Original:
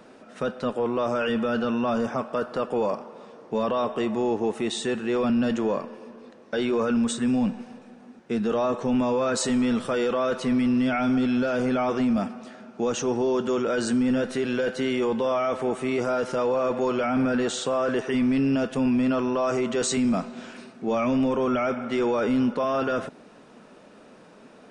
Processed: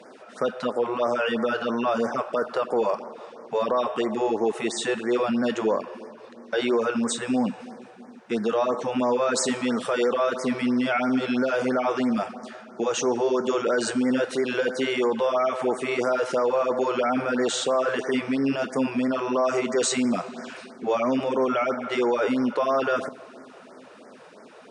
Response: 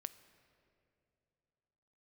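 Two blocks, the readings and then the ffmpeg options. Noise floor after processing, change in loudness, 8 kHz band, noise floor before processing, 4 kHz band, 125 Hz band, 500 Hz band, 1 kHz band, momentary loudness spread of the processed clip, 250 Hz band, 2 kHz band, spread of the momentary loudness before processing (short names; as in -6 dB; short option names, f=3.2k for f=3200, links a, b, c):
-47 dBFS, 0.0 dB, +2.5 dB, -50 dBFS, +2.5 dB, -6.5 dB, +1.5 dB, +2.5 dB, 7 LU, -2.5 dB, +3.0 dB, 6 LU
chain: -filter_complex "[0:a]highpass=98,bass=f=250:g=-11,treble=f=4k:g=-2,alimiter=limit=-19.5dB:level=0:latency=1:release=107,asplit=2[a][b];[1:a]atrim=start_sample=2205,asetrate=26019,aresample=44100[c];[b][c]afir=irnorm=-1:irlink=0,volume=-1dB[d];[a][d]amix=inputs=2:normalize=0,afftfilt=real='re*(1-between(b*sr/1024,210*pow(3400/210,0.5+0.5*sin(2*PI*3*pts/sr))/1.41,210*pow(3400/210,0.5+0.5*sin(2*PI*3*pts/sr))*1.41))':imag='im*(1-between(b*sr/1024,210*pow(3400/210,0.5+0.5*sin(2*PI*3*pts/sr))/1.41,210*pow(3400/210,0.5+0.5*sin(2*PI*3*pts/sr))*1.41))':win_size=1024:overlap=0.75"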